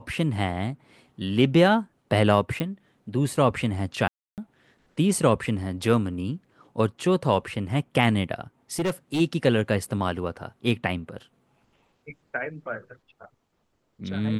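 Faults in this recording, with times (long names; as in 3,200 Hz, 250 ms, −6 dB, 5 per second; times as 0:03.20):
0:02.60: click −16 dBFS
0:04.08–0:04.38: drop-out 298 ms
0:08.79–0:09.21: clipping −21.5 dBFS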